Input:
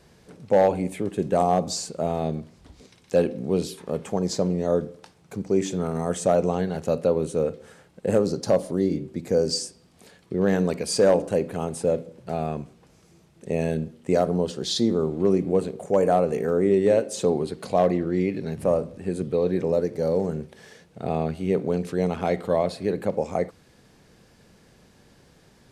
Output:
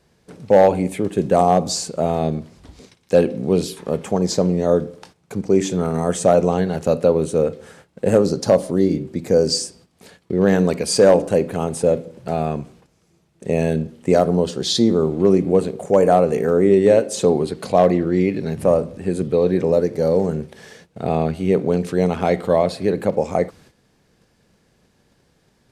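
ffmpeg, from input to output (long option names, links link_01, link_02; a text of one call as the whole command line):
ffmpeg -i in.wav -af "atempo=1,agate=range=-11dB:threshold=-52dB:ratio=16:detection=peak,volume=6dB" out.wav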